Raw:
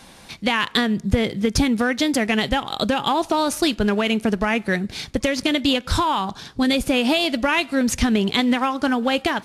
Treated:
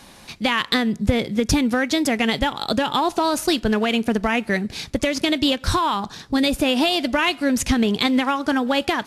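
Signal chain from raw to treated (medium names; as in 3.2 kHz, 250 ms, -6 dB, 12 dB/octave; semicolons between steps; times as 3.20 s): speed mistake 24 fps film run at 25 fps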